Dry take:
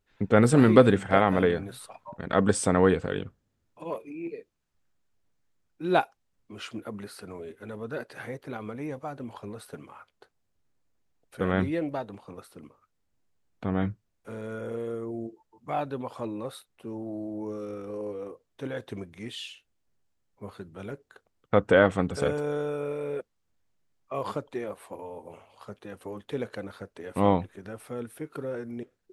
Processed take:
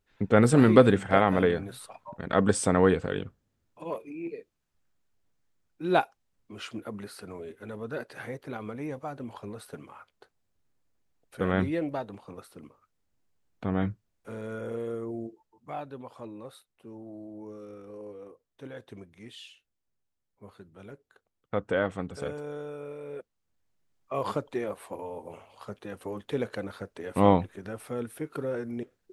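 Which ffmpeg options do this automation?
-af "volume=9.5dB,afade=t=out:st=15.11:d=0.71:silence=0.421697,afade=t=in:st=23.05:d=1.28:silence=0.316228"

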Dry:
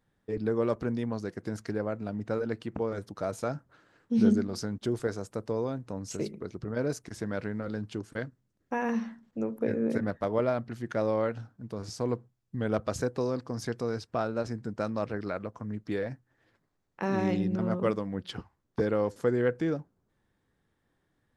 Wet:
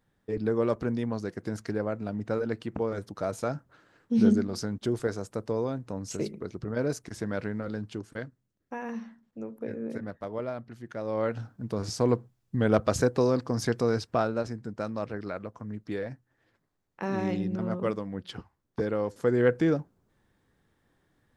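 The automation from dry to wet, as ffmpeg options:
-af "volume=20.5dB,afade=t=out:st=7.46:d=1.35:silence=0.398107,afade=t=in:st=11.04:d=0.51:silence=0.237137,afade=t=out:st=14.01:d=0.54:silence=0.421697,afade=t=in:st=19.13:d=0.4:silence=0.473151"

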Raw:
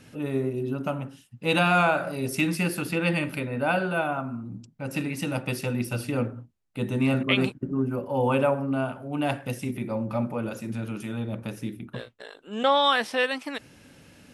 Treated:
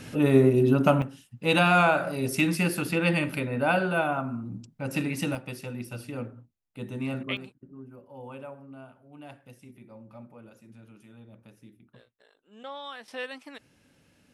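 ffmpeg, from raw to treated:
-af "asetnsamples=n=441:p=0,asendcmd='1.02 volume volume 0.5dB;5.35 volume volume -8.5dB;7.37 volume volume -19dB;13.08 volume volume -11dB',volume=8.5dB"

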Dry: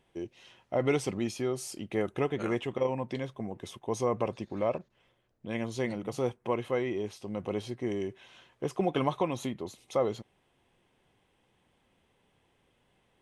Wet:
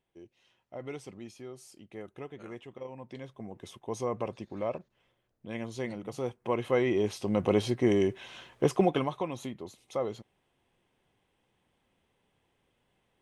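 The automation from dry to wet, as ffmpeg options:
-af "volume=8dB,afade=t=in:st=2.9:d=0.78:silence=0.334965,afade=t=in:st=6.33:d=0.92:silence=0.266073,afade=t=out:st=8.64:d=0.43:silence=0.251189"

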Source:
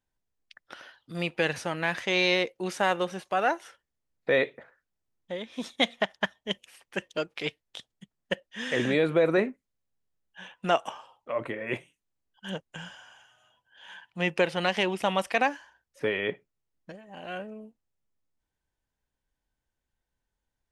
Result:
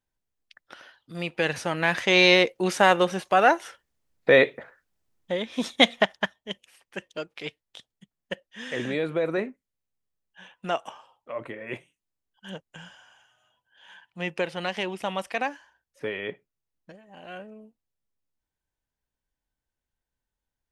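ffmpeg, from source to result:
-af "volume=7dB,afade=t=in:st=1.24:d=1:silence=0.398107,afade=t=out:st=5.96:d=0.41:silence=0.298538"

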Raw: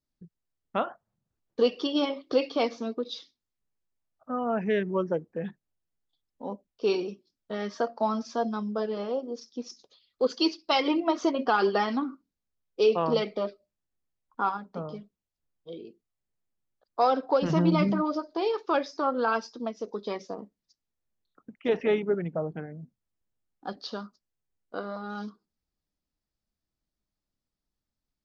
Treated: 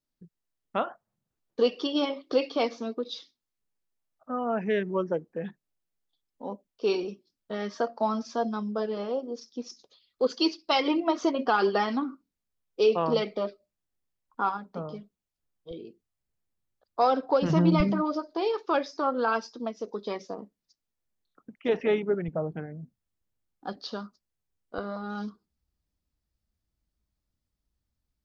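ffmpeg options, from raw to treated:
-af "asetnsamples=n=441:p=0,asendcmd='7.04 equalizer g -0.5;15.71 equalizer g 7;17.8 equalizer g -2;22.28 equalizer g 4.5;24.78 equalizer g 11.5',equalizer=f=62:t=o:w=2:g=-7"

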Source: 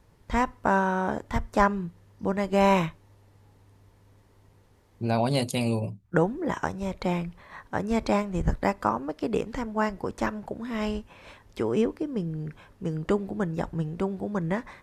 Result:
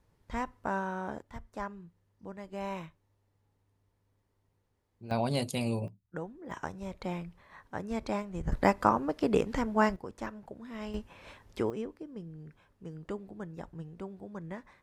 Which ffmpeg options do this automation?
-af "asetnsamples=n=441:p=0,asendcmd='1.22 volume volume -17dB;5.11 volume volume -5.5dB;5.88 volume volume -16.5dB;6.51 volume volume -9dB;8.52 volume volume 0.5dB;9.96 volume volume -11dB;10.94 volume volume -3dB;11.7 volume volume -13.5dB',volume=-10dB"

